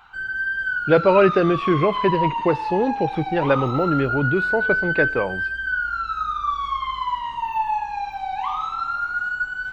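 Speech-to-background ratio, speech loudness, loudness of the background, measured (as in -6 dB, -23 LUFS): 3.5 dB, -21.0 LUFS, -24.5 LUFS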